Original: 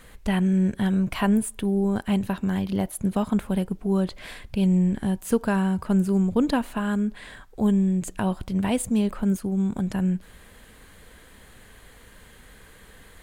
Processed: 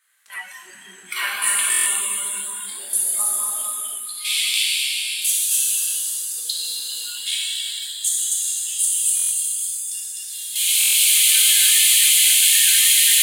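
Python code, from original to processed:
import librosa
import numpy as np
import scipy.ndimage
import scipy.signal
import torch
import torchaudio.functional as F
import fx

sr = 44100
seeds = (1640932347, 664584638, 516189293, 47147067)

y = fx.recorder_agc(x, sr, target_db=-14.5, rise_db_per_s=48.0, max_gain_db=30)
y = fx.peak_eq(y, sr, hz=9700.0, db=4.0, octaves=1.4)
y = 10.0 ** (-3.0 / 20.0) * np.tanh(y / 10.0 ** (-3.0 / 20.0))
y = fx.highpass_res(y, sr, hz=fx.steps((0.0, 1500.0), (3.33, 2900.0)), q=1.9)
y = fx.echo_multitap(y, sr, ms=(73, 253), db=(-12.0, -3.5))
y = fx.level_steps(y, sr, step_db=14)
y = fx.high_shelf(y, sr, hz=4500.0, db=10.0)
y = fx.rev_plate(y, sr, seeds[0], rt60_s=4.6, hf_ratio=1.0, predelay_ms=0, drr_db=-8.0)
y = fx.noise_reduce_blind(y, sr, reduce_db=16)
y = fx.buffer_glitch(y, sr, at_s=(1.7, 9.15, 10.79), block=1024, repeats=6)
y = y * 10.0 ** (-1.0 / 20.0)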